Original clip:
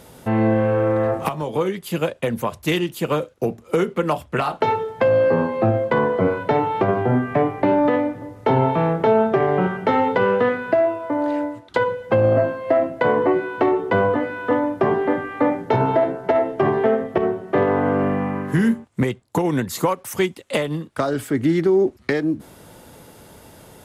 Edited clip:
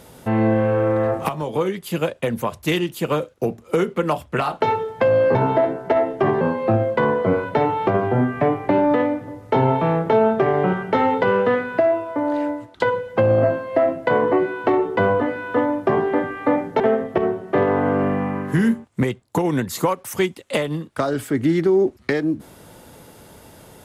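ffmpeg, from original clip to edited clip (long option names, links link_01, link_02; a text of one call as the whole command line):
ffmpeg -i in.wav -filter_complex "[0:a]asplit=4[link_01][link_02][link_03][link_04];[link_01]atrim=end=5.352[link_05];[link_02]atrim=start=15.738:end=16.802[link_06];[link_03]atrim=start=5.348:end=15.742[link_07];[link_04]atrim=start=16.798[link_08];[link_05][link_06]acrossfade=duration=0.004:curve1=hsin:curve2=hsin[link_09];[link_09][link_07]acrossfade=duration=0.004:curve1=hsin:curve2=hsin[link_10];[link_10][link_08]acrossfade=duration=0.004:curve1=hsin:curve2=hsin" out.wav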